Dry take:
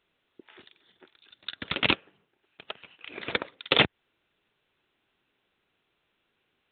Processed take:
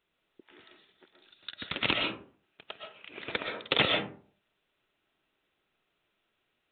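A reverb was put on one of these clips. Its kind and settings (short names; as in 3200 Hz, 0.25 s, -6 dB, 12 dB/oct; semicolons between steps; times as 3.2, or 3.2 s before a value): digital reverb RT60 0.46 s, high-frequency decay 0.45×, pre-delay 85 ms, DRR 1 dB; gain -5 dB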